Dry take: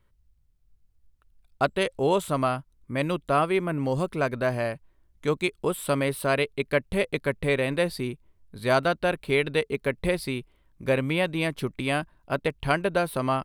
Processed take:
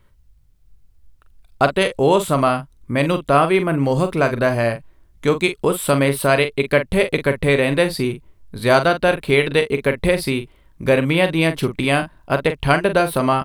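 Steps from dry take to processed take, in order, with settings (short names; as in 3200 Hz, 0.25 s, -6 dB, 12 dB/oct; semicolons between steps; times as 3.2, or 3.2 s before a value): in parallel at -3 dB: compressor, threshold -30 dBFS, peak gain reduction 12.5 dB; on the sum: doubler 43 ms -9.5 dB; gain +6 dB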